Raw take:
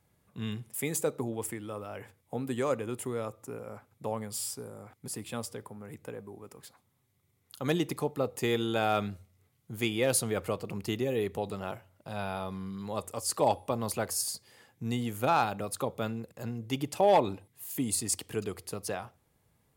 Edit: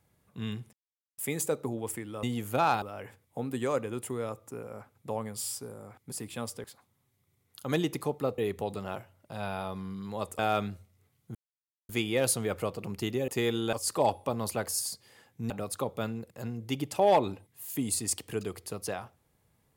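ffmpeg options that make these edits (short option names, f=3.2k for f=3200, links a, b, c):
-filter_complex "[0:a]asplit=11[a][b][c][d][e][f][g][h][i][j][k];[a]atrim=end=0.73,asetpts=PTS-STARTPTS,afade=t=out:st=0.726:d=0.004:c=hsin,apad=pad_dur=0.45[l];[b]atrim=start=0.73:end=1.782,asetpts=PTS-STARTPTS,afade=t=in:d=0.004:c=hsin[m];[c]atrim=start=14.918:end=15.512[n];[d]atrim=start=1.778:end=5.602[o];[e]atrim=start=6.598:end=8.342[p];[f]atrim=start=11.138:end=13.152[q];[g]atrim=start=8.788:end=9.75,asetpts=PTS-STARTPTS,afade=t=out:st=0.958:d=0.004:c=hsin,apad=pad_dur=0.54[r];[h]atrim=start=9.75:end=11.142,asetpts=PTS-STARTPTS,afade=t=in:d=0.004:c=hsin[s];[i]atrim=start=8.338:end=8.792[t];[j]atrim=start=13.148:end=14.922[u];[k]atrim=start=15.508[v];[l][m]concat=n=2:v=0:a=1[w];[w][n]acrossfade=d=0.004:c1=hsin:c2=hsin[x];[x][o]acrossfade=d=0.004:c1=hsin:c2=hsin[y];[y][p]acrossfade=d=0.004:c1=hsin:c2=hsin[z];[z][q]acrossfade=d=0.004:c1=hsin:c2=hsin[aa];[r][s]concat=n=2:v=0:a=1[ab];[aa][ab]acrossfade=d=0.004:c1=hsin:c2=hsin[ac];[ac][t]acrossfade=d=0.004:c1=hsin:c2=hsin[ad];[ad][u]acrossfade=d=0.004:c1=hsin:c2=hsin[ae];[ae][v]acrossfade=d=0.004:c1=hsin:c2=hsin"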